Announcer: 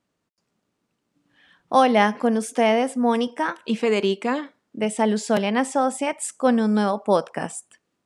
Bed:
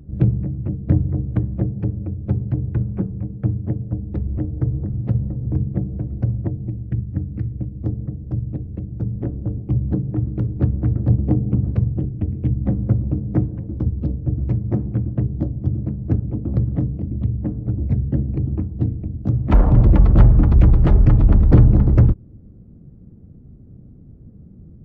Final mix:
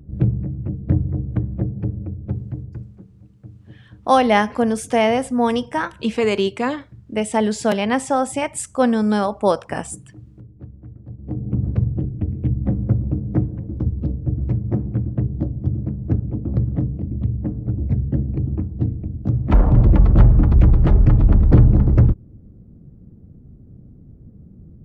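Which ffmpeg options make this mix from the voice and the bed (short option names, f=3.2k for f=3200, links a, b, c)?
-filter_complex "[0:a]adelay=2350,volume=2dB[a];[1:a]volume=18dB,afade=t=out:st=1.99:d=1:silence=0.11885,afade=t=in:st=11.19:d=0.49:silence=0.105925[b];[a][b]amix=inputs=2:normalize=0"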